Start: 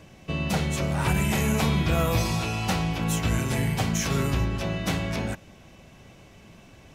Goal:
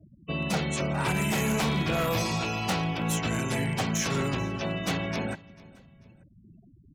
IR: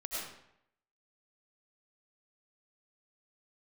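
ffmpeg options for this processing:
-filter_complex "[0:a]afftfilt=real='re*gte(hypot(re,im),0.0126)':imag='im*gte(hypot(re,im),0.0126)':win_size=1024:overlap=0.75,lowshelf=frequency=87:gain=-8,acrossover=split=100|5300[link_01][link_02][link_03];[link_01]acompressor=threshold=-48dB:ratio=6[link_04];[link_04][link_02][link_03]amix=inputs=3:normalize=0,aeval=exprs='0.1*(abs(mod(val(0)/0.1+3,4)-2)-1)':channel_layout=same,aecho=1:1:442|884:0.075|0.027"

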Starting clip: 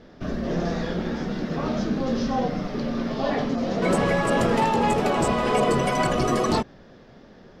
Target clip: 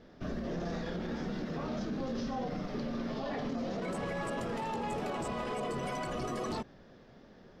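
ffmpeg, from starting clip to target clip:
ffmpeg -i in.wav -af "alimiter=limit=-21dB:level=0:latency=1:release=29,volume=-7.5dB" out.wav

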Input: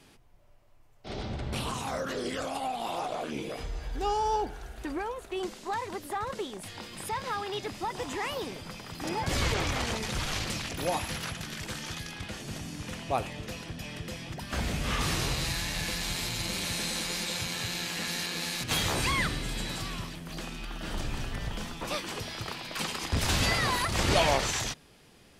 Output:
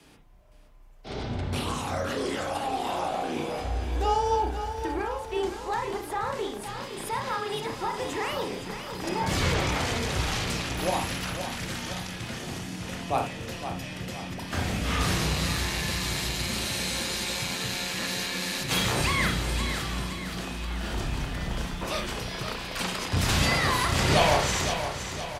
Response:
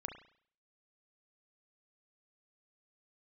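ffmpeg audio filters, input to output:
-filter_complex "[0:a]aecho=1:1:516|1032|1548|2064|2580|3096:0.355|0.185|0.0959|0.0499|0.0259|0.0135,afreqshift=18[link_01];[1:a]atrim=start_sample=2205,atrim=end_sample=3528[link_02];[link_01][link_02]afir=irnorm=-1:irlink=0,volume=5dB"

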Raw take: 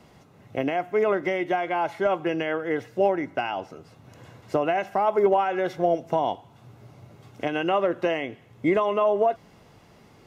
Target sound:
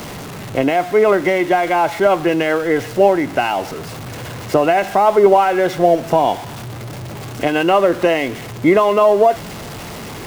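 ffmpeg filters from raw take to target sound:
ffmpeg -i in.wav -af "aeval=exprs='val(0)+0.5*0.0178*sgn(val(0))':channel_layout=same,volume=9dB" out.wav

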